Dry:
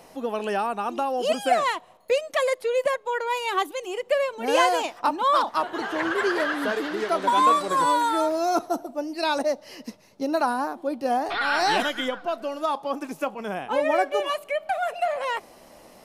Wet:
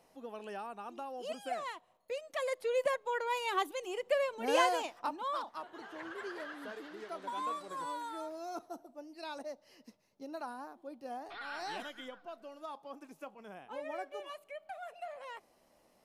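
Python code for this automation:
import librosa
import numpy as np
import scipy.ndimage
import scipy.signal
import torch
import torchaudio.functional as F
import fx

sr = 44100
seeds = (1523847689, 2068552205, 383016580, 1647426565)

y = fx.gain(x, sr, db=fx.line((2.13, -17.0), (2.72, -8.0), (4.59, -8.0), (5.58, -19.0)))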